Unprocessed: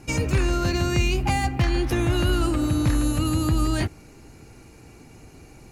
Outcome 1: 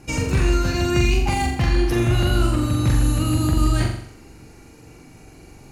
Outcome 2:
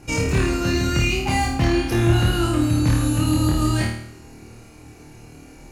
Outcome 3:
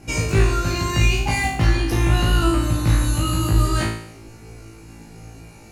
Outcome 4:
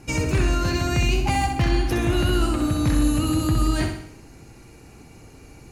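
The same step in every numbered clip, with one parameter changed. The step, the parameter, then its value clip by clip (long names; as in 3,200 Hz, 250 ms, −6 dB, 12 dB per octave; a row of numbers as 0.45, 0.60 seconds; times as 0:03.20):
flutter between parallel walls, walls apart: 7.3, 4.5, 3.1, 11 metres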